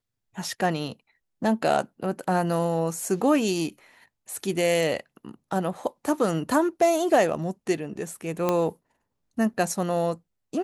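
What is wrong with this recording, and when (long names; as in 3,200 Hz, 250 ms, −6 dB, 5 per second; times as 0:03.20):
0:08.49: click −10 dBFS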